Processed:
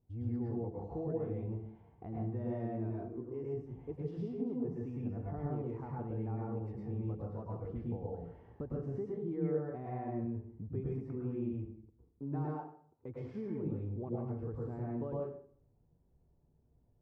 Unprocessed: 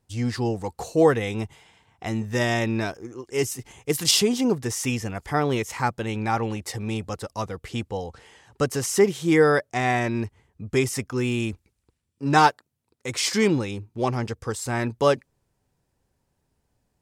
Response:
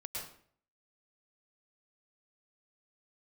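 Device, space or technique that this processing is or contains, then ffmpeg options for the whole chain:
television next door: -filter_complex "[0:a]bandreject=f=530:w=12,acompressor=threshold=0.0112:ratio=3,lowpass=530[s0];[1:a]atrim=start_sample=2205[s1];[s0][s1]afir=irnorm=-1:irlink=0,volume=1.26"

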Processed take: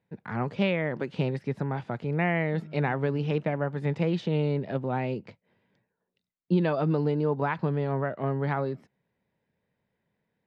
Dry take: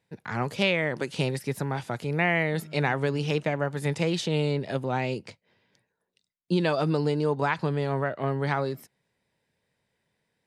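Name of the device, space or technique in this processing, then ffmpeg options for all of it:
phone in a pocket: -af "lowpass=3700,equalizer=f=200:t=o:w=0.62:g=4,highshelf=f=2300:g=-9,volume=0.891"

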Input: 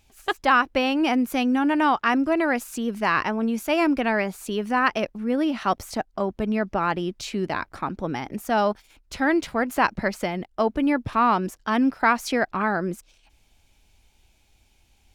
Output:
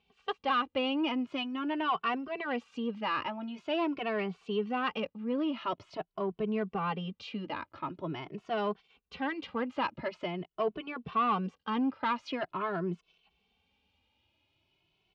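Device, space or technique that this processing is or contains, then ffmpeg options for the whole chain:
barber-pole flanger into a guitar amplifier: -filter_complex "[0:a]asplit=2[s0][s1];[s1]adelay=2.2,afreqshift=0.45[s2];[s0][s2]amix=inputs=2:normalize=1,asoftclip=type=tanh:threshold=0.141,highpass=100,equalizer=f=170:t=q:w=4:g=6,equalizer=f=430:t=q:w=4:g=6,equalizer=f=1100:t=q:w=4:g=6,equalizer=f=1700:t=q:w=4:g=-4,equalizer=f=2900:t=q:w=4:g=8,lowpass=f=4200:w=0.5412,lowpass=f=4200:w=1.3066,volume=0.422"

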